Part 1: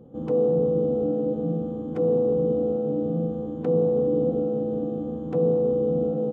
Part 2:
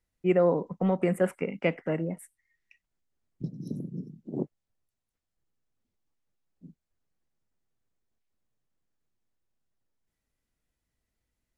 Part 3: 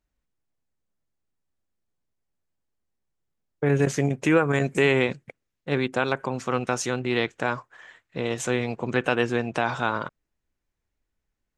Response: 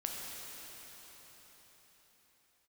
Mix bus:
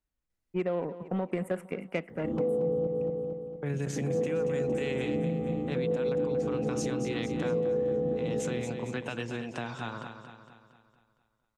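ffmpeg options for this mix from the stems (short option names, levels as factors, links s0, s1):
-filter_complex "[0:a]adelay=2100,volume=1.06,asplit=3[s0][s1][s2];[s0]atrim=end=2.87,asetpts=PTS-STARTPTS,afade=t=out:st=2.866:d=0.004:c=hsin[s3];[s1]atrim=start=2.87:end=3.96,asetpts=PTS-STARTPTS,volume=0[s4];[s2]atrim=start=3.96,asetpts=PTS-STARTPTS,afade=t=in:d=0.004:c=hsin[s5];[s3][s4][s5]concat=n=3:v=0:a=1,asplit=2[s6][s7];[s7]volume=0.422[s8];[1:a]aeval=exprs='0.251*(cos(1*acos(clip(val(0)/0.251,-1,1)))-cos(1*PI/2))+0.01*(cos(7*acos(clip(val(0)/0.251,-1,1)))-cos(7*PI/2))':c=same,adelay=300,volume=0.708,asplit=2[s9][s10];[s10]volume=0.106[s11];[2:a]acrossover=split=230|3000[s12][s13][s14];[s13]acompressor=threshold=0.0355:ratio=4[s15];[s12][s15][s14]amix=inputs=3:normalize=0,volume=0.447,asplit=3[s16][s17][s18];[s17]volume=0.376[s19];[s18]apad=whole_len=371407[s20];[s6][s20]sidechaincompress=threshold=0.0158:ratio=8:attack=5.3:release=111[s21];[s8][s11][s19]amix=inputs=3:normalize=0,aecho=0:1:230|460|690|920|1150|1380|1610:1|0.5|0.25|0.125|0.0625|0.0312|0.0156[s22];[s21][s9][s16][s22]amix=inputs=4:normalize=0,acompressor=threshold=0.0501:ratio=6"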